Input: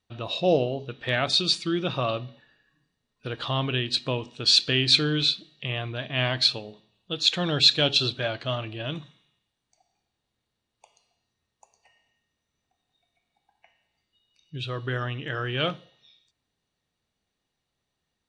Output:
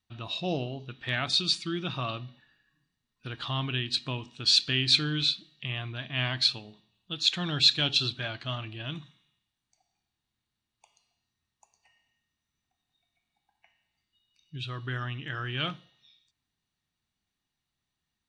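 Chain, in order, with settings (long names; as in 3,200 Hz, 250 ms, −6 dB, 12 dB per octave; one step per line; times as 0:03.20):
parametric band 510 Hz −12 dB 0.8 octaves
level −3 dB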